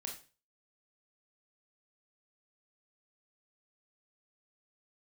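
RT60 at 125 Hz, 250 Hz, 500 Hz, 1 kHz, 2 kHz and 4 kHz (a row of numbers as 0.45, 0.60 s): 0.45, 0.35, 0.40, 0.35, 0.35, 0.35 s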